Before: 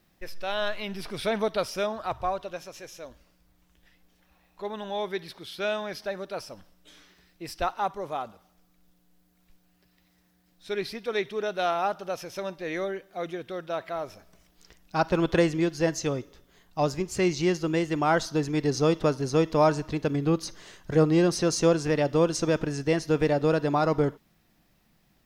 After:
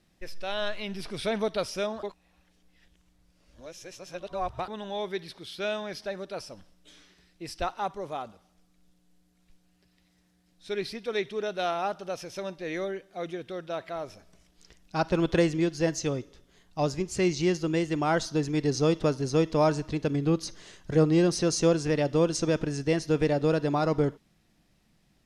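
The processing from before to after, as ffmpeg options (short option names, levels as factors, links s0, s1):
-filter_complex "[0:a]asplit=3[s0][s1][s2];[s0]atrim=end=2.032[s3];[s1]atrim=start=2.028:end=4.682,asetpts=PTS-STARTPTS,areverse[s4];[s2]atrim=start=4.678[s5];[s3][s4]acrossfade=d=0.004:c1=hsin:c2=hsin[s6];[s6][s5]acrossfade=d=0.004:c1=hsin:c2=hsin,lowpass=f=11000:w=0.5412,lowpass=f=11000:w=1.3066,equalizer=f=1100:t=o:w=1.9:g=-4"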